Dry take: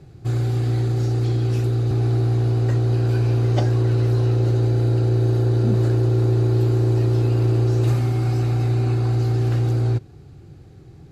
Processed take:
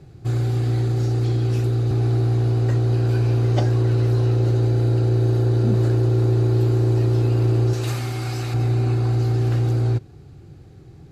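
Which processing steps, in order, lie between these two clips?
0:07.73–0:08.54: tilt shelving filter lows −6.5 dB, about 900 Hz

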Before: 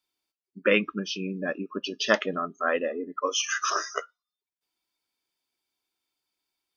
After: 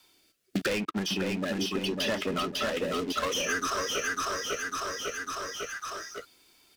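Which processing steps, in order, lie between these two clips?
downward compressor 2 to 1, threshold −60 dBFS, peak gain reduction 23.5 dB
leveller curve on the samples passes 5
rotating-speaker cabinet horn 0.8 Hz
repeating echo 550 ms, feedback 33%, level −4.5 dB
multiband upward and downward compressor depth 100%
level +4.5 dB

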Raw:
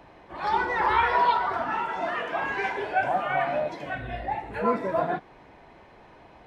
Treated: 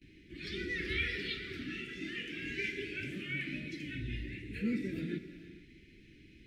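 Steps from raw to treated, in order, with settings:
noise gate with hold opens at −43 dBFS
Chebyshev band-stop filter 330–2,200 Hz, order 3
reverb whose tail is shaped and stops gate 500 ms flat, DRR 11 dB
level −1 dB

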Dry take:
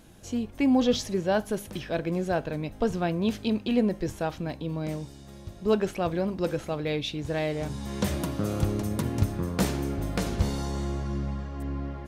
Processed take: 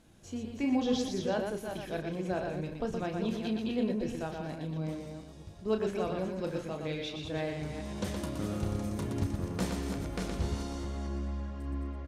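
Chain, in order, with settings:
delay that plays each chunk backwards 217 ms, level −6.5 dB
low-pass filter 11,000 Hz 12 dB per octave
loudspeakers that aren't time-aligned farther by 11 metres −8 dB, 41 metres −5 dB
level −8.5 dB

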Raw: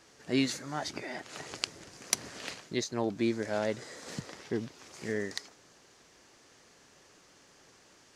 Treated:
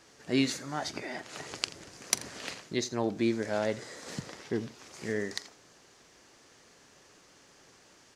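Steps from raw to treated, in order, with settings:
multi-tap delay 44/84 ms −19/−19.5 dB
level +1 dB

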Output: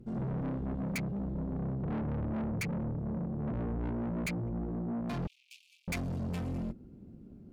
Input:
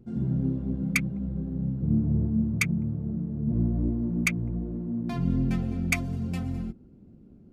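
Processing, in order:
tube saturation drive 35 dB, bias 0.45
0:05.27–0:05.88: Butterworth high-pass 2,400 Hz 96 dB per octave
level +2.5 dB

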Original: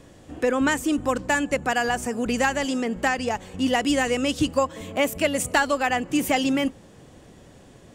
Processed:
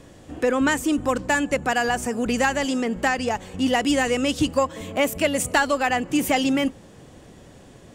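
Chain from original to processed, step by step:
in parallel at −11 dB: soft clipping −23.5 dBFS, distortion −9 dB
on the sum: MP3 320 kbit/s 48,000 Hz

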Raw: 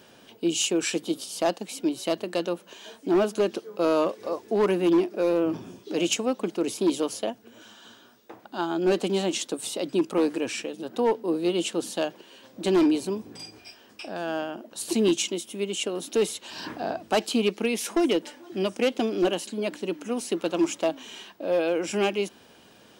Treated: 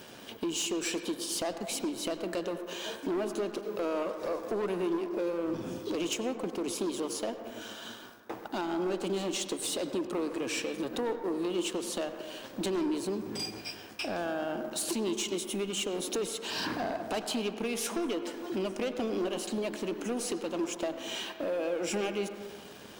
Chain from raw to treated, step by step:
downward compressor, threshold −34 dBFS, peak gain reduction 14.5 dB
leveller curve on the samples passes 3
on a send: convolution reverb RT60 1.6 s, pre-delay 83 ms, DRR 7.5 dB
on the sum: level −5.5 dB

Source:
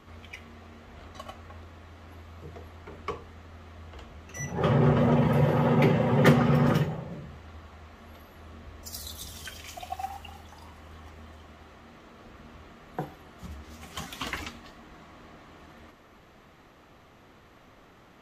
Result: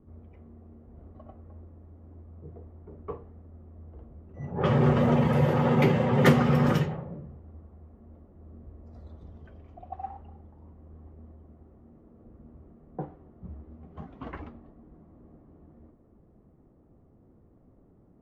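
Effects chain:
low-pass that shuts in the quiet parts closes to 330 Hz, open at −18.5 dBFS

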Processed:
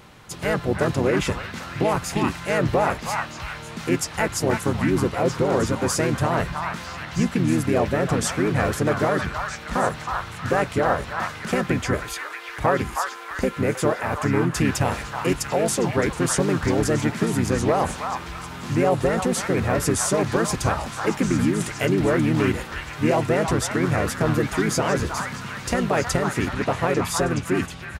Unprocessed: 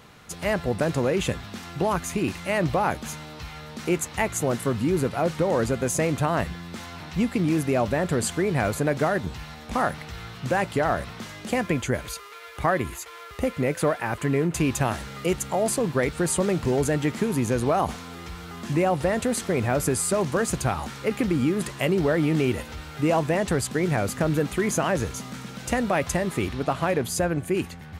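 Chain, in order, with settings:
pitch-shifted copies added −5 semitones −2 dB
echo through a band-pass that steps 317 ms, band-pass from 1,200 Hz, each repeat 0.7 octaves, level −1 dB

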